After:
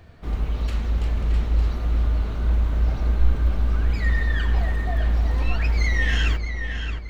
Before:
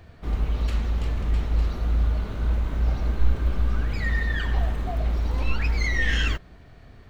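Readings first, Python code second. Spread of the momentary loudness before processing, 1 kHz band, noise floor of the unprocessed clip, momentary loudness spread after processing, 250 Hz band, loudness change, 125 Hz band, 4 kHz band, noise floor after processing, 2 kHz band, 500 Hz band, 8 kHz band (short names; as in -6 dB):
4 LU, +1.0 dB, -48 dBFS, 5 LU, +1.0 dB, +2.5 dB, +3.0 dB, +0.5 dB, -30 dBFS, +1.0 dB, +1.0 dB, n/a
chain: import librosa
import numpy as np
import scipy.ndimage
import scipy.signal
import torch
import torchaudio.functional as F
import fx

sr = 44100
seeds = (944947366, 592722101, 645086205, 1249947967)

y = fx.echo_filtered(x, sr, ms=622, feedback_pct=41, hz=4800.0, wet_db=-7.0)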